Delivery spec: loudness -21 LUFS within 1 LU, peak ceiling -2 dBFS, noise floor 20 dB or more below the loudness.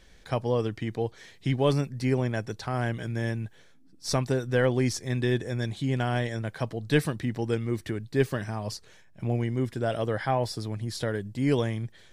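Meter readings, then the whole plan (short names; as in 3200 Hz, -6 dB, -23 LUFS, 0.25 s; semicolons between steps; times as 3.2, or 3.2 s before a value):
loudness -29.0 LUFS; peak -10.5 dBFS; loudness target -21.0 LUFS
-> gain +8 dB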